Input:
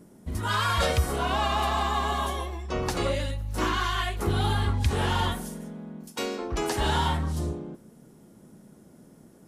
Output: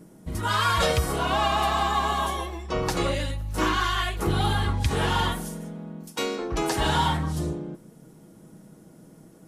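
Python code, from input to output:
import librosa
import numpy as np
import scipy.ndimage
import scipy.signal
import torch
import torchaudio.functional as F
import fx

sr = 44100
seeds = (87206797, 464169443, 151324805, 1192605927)

y = x + 0.38 * np.pad(x, (int(6.3 * sr / 1000.0), 0))[:len(x)]
y = y * 10.0 ** (2.0 / 20.0)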